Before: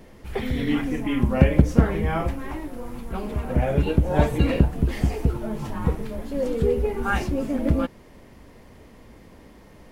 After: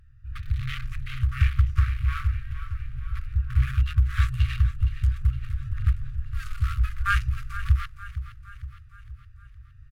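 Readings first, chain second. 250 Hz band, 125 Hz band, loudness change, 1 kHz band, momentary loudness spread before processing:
under -20 dB, -0.5 dB, -3.0 dB, -6.0 dB, 12 LU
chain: Wiener smoothing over 41 samples; on a send: feedback echo 0.464 s, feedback 51%, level -13.5 dB; on the sum: one-sided clip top -19 dBFS, bottom -3.5 dBFS; AGC gain up to 4.5 dB; FFT band-reject 130–1100 Hz

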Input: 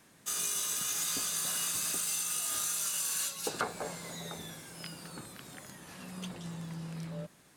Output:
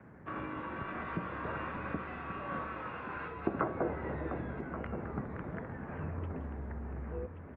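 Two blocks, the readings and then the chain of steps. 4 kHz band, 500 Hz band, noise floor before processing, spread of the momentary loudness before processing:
under -20 dB, +5.5 dB, -61 dBFS, 15 LU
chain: tilt -3.5 dB/oct; de-hum 286 Hz, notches 4; compressor 5:1, threshold -36 dBFS, peak gain reduction 9 dB; on a send: feedback echo 1.13 s, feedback 16%, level -10.5 dB; on the sum: mistuned SSB -97 Hz 230–2200 Hz; gain +8 dB; Opus 48 kbps 48000 Hz

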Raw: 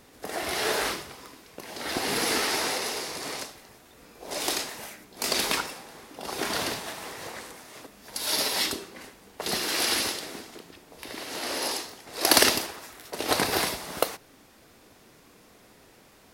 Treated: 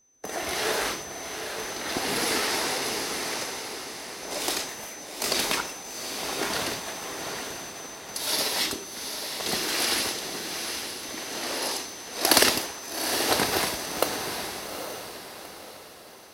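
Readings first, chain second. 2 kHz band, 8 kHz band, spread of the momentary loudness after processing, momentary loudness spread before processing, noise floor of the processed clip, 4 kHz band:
+1.0 dB, +2.0 dB, 13 LU, 20 LU, -44 dBFS, +1.0 dB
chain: whine 6100 Hz -41 dBFS; gate with hold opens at -32 dBFS; diffused feedback echo 0.82 s, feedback 42%, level -6.5 dB

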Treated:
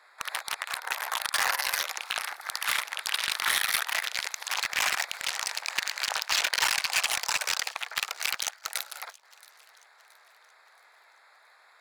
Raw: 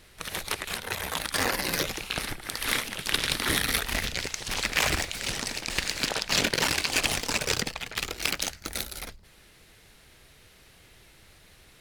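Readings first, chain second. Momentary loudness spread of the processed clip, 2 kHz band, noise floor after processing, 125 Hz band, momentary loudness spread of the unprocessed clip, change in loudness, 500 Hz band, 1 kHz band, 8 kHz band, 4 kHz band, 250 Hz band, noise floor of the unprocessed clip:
8 LU, +0.5 dB, -59 dBFS, under -20 dB, 8 LU, -0.5 dB, -10.0 dB, +1.5 dB, -0.5 dB, -1.0 dB, -21.0 dB, -56 dBFS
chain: Wiener smoothing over 15 samples; HPF 810 Hz 24 dB/oct; in parallel at 0 dB: compressor 5:1, threshold -39 dBFS, peak gain reduction 17.5 dB; on the sum: limiter -12 dBFS, peak gain reduction 6 dB; thin delay 0.674 s, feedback 43%, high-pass 2800 Hz, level -22 dB; hard clip -19 dBFS, distortion -14 dB; gain +2.5 dB

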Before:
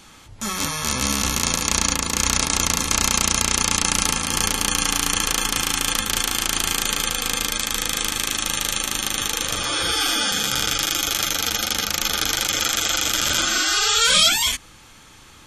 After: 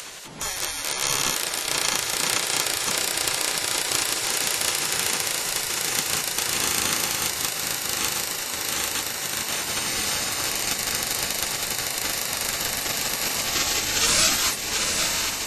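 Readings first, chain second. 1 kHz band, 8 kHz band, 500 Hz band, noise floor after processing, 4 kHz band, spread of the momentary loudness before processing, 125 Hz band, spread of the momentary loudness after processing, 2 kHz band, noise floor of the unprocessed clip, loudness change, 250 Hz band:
-4.0 dB, -2.5 dB, -1.0 dB, -31 dBFS, -4.5 dB, 5 LU, -7.5 dB, 4 LU, -3.0 dB, -47 dBFS, -3.5 dB, -7.5 dB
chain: on a send: diffused feedback echo 0.797 s, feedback 60%, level -4 dB; on the sum: spectral gate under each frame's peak -10 dB weak; upward compressor, threshold -27 dBFS

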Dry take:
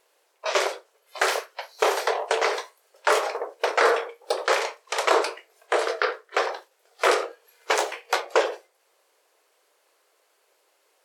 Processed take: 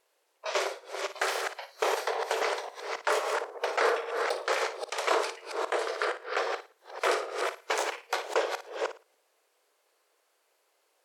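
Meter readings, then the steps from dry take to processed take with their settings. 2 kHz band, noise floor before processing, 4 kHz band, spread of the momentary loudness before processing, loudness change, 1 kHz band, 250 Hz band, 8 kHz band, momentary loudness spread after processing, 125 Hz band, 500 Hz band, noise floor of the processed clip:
-5.5 dB, -67 dBFS, -5.5 dB, 12 LU, -6.0 dB, -5.5 dB, -5.5 dB, -5.5 dB, 8 LU, n/a, -5.5 dB, -73 dBFS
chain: reverse delay 0.269 s, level -4.5 dB; flutter echo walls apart 9.7 m, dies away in 0.29 s; gain -7 dB

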